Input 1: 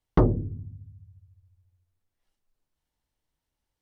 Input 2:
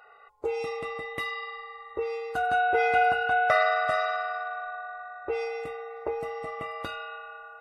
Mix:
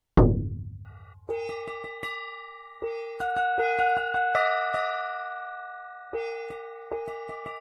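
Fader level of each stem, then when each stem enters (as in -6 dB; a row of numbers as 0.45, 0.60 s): +2.0, -1.5 dB; 0.00, 0.85 s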